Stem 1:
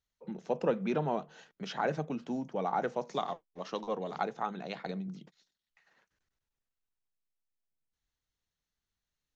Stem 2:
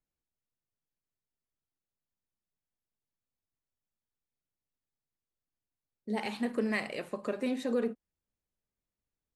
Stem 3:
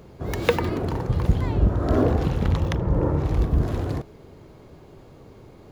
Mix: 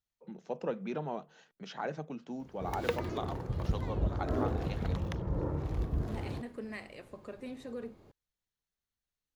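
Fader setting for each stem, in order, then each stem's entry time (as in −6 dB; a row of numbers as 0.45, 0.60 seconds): −5.5, −11.0, −12.0 decibels; 0.00, 0.00, 2.40 seconds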